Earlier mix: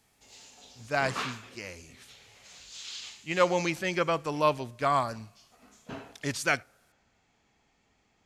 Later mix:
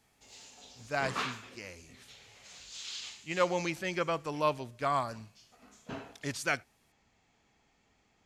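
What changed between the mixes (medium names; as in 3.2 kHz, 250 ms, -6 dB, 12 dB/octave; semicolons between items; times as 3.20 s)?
speech -4.0 dB; reverb: off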